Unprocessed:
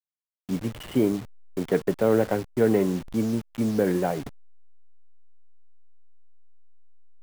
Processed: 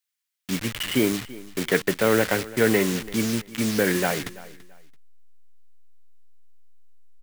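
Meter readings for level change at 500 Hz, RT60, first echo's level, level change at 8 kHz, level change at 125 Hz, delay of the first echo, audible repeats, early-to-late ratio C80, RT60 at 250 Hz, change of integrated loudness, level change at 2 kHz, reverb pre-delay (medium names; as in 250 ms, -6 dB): 0.0 dB, no reverb, -19.0 dB, +13.0 dB, 0.0 dB, 335 ms, 2, no reverb, no reverb, +1.5 dB, +12.0 dB, no reverb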